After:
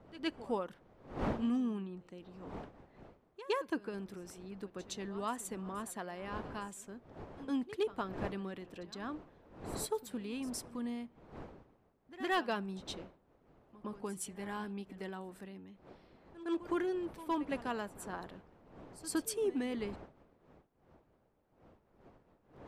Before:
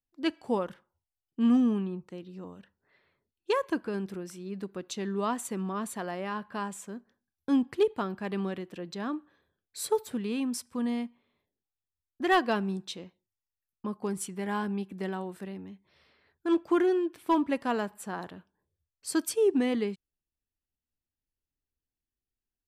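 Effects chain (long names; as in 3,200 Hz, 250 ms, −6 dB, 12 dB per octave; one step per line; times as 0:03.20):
wind on the microphone 560 Hz −45 dBFS
harmonic and percussive parts rebalanced harmonic −5 dB
backwards echo 113 ms −16 dB
level −5 dB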